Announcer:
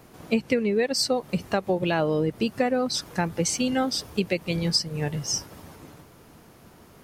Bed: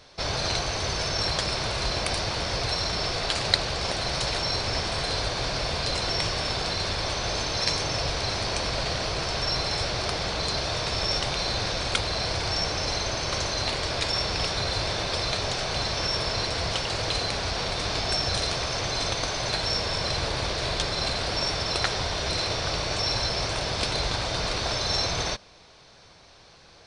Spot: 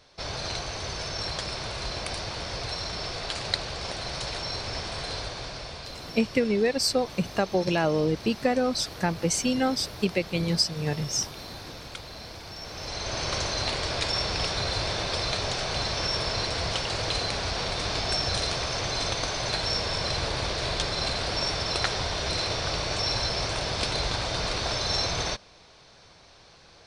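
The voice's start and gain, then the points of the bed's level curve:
5.85 s, −0.5 dB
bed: 0:05.14 −5.5 dB
0:06.09 −14 dB
0:12.57 −14 dB
0:13.20 −1 dB

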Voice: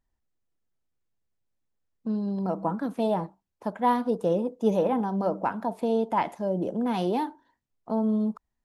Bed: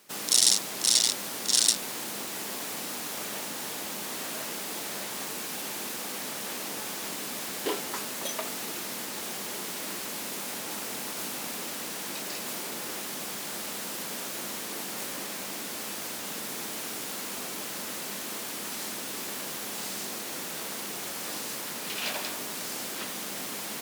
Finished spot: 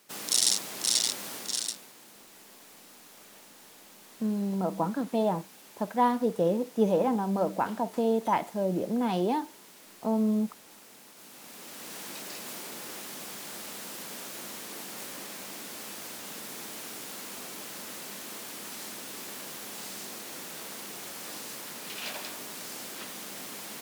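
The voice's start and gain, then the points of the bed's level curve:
2.15 s, −1.0 dB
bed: 0:01.34 −3.5 dB
0:01.94 −17 dB
0:11.16 −17 dB
0:11.96 −5 dB

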